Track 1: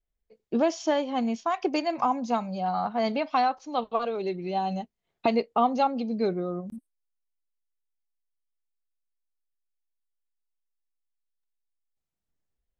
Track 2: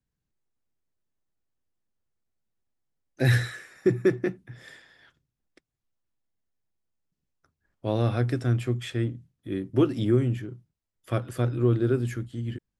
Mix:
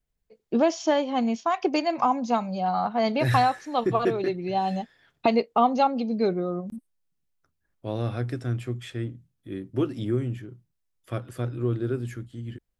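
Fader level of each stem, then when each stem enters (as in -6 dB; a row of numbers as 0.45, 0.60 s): +2.5, -4.0 dB; 0.00, 0.00 s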